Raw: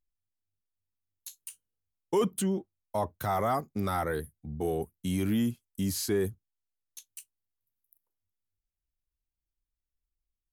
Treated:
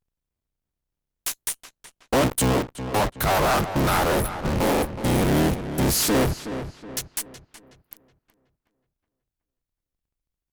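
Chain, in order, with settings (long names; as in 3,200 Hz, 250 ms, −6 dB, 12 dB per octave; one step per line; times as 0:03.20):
sub-harmonics by changed cycles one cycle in 3, inverted
in parallel at −10 dB: fuzz pedal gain 58 dB, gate −51 dBFS
on the sum: feedback echo with a low-pass in the loop 371 ms, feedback 41%, low-pass 3,400 Hz, level −10.5 dB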